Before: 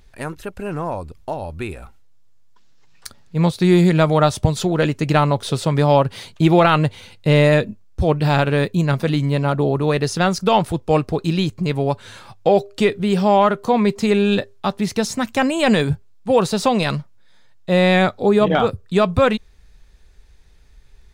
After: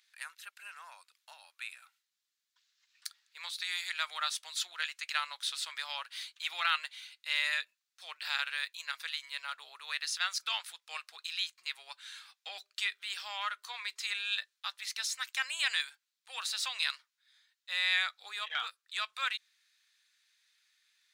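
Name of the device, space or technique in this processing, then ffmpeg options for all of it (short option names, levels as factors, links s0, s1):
headphones lying on a table: -af "highpass=f=1500:w=0.5412,highpass=f=1500:w=1.3066,equalizer=f=3900:t=o:w=0.53:g=4,volume=0.398"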